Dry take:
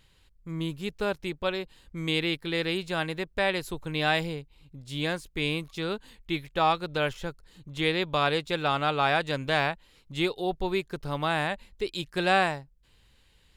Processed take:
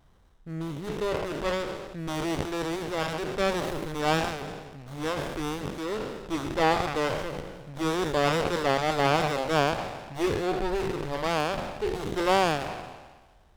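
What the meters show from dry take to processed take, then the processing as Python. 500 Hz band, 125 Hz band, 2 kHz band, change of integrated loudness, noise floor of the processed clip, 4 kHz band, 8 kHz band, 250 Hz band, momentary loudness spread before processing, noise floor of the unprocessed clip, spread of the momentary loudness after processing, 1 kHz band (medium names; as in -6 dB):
+2.5 dB, 0.0 dB, -2.5 dB, +0.5 dB, -57 dBFS, -3.0 dB, +7.5 dB, +1.5 dB, 11 LU, -62 dBFS, 12 LU, +1.0 dB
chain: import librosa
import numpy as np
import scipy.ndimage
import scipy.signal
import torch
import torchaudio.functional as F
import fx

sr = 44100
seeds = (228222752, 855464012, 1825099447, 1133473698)

y = fx.spec_trails(x, sr, decay_s=1.37)
y = fx.vibrato(y, sr, rate_hz=1.7, depth_cents=28.0)
y = fx.running_max(y, sr, window=17)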